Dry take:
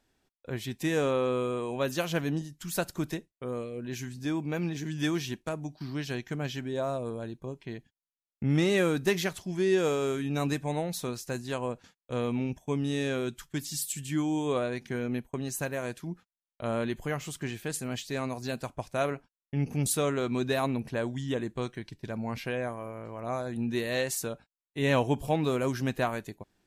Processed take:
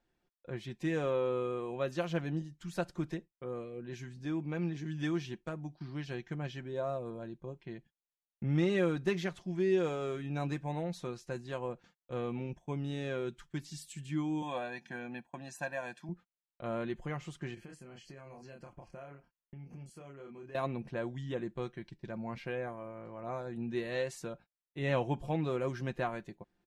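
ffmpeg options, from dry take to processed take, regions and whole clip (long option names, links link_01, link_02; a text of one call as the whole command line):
ffmpeg -i in.wav -filter_complex "[0:a]asettb=1/sr,asplit=3[link_01][link_02][link_03];[link_01]atrim=end=14.424[link_04];[link_02]atrim=start=14.42:end=16.09,asetpts=PTS-STARTPTS,afade=type=in:duration=0.004:curve=qsin,afade=type=out:start_time=1.666:duration=0.004:curve=qsin,highpass=270,aecho=1:1:1.2:0.87,atrim=end_sample=73647[link_05];[link_03]atrim=start=16.086[link_06];[link_04][link_05]acrossfade=duration=0.004:curve1=hsin:curve2=qsin[link_07];[link_07][link_06]acrossfade=duration=0.004:curve1=qsin:curve2=hsin,asettb=1/sr,asplit=3[link_08][link_09][link_10];[link_08]atrim=end=17.544[link_11];[link_09]atrim=start=17.54:end=20.55,asetpts=PTS-STARTPTS,afade=type=in:duration=0.004:curve=qsin,afade=type=out:start_time=3.006:duration=0.004:curve=qsin,asplit=2[link_12][link_13];[link_13]adelay=29,volume=-3dB[link_14];[link_12][link_14]amix=inputs=2:normalize=0,atrim=end_sample=132741,acompressor=threshold=-40dB:ratio=8:attack=3.2:release=140:knee=1:detection=peak,asuperstop=centerf=3700:order=8:qfactor=4.9[link_15];[link_10]atrim=start=20.546[link_16];[link_11][link_15]acrossfade=duration=0.004:curve1=hsin:curve2=qsin[link_17];[link_17][link_16]acrossfade=duration=0.004:curve1=qsin:curve2=hsin,lowpass=8800,highshelf=frequency=4300:gain=-11.5,aecho=1:1:5.7:0.46,volume=-6dB" out.wav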